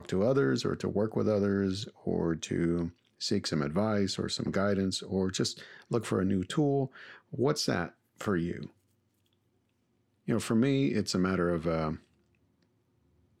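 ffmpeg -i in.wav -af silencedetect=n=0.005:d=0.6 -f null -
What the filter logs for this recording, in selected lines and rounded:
silence_start: 8.68
silence_end: 10.28 | silence_duration: 1.60
silence_start: 11.97
silence_end: 13.40 | silence_duration: 1.43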